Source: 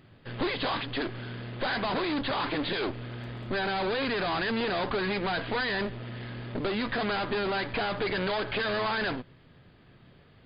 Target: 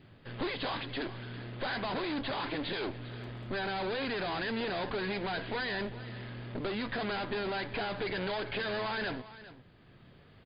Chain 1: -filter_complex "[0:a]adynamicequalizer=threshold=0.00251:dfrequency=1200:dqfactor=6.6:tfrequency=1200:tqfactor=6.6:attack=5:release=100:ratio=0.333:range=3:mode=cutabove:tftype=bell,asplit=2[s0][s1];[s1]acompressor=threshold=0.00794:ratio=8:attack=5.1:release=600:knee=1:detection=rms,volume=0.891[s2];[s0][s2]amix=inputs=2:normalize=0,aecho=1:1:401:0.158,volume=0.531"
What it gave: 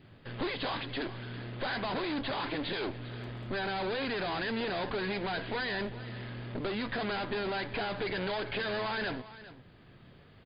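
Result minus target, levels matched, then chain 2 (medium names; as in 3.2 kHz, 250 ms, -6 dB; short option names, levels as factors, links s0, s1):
compression: peak gain reduction -9 dB
-filter_complex "[0:a]adynamicequalizer=threshold=0.00251:dfrequency=1200:dqfactor=6.6:tfrequency=1200:tqfactor=6.6:attack=5:release=100:ratio=0.333:range=3:mode=cutabove:tftype=bell,asplit=2[s0][s1];[s1]acompressor=threshold=0.00251:ratio=8:attack=5.1:release=600:knee=1:detection=rms,volume=0.891[s2];[s0][s2]amix=inputs=2:normalize=0,aecho=1:1:401:0.158,volume=0.531"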